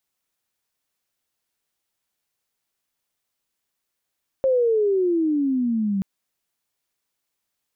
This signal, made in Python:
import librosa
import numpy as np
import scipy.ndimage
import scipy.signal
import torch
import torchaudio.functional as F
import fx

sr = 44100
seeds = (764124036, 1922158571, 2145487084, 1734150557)

y = fx.chirp(sr, length_s=1.58, from_hz=540.0, to_hz=190.0, law='logarithmic', from_db=-15.5, to_db=-20.0)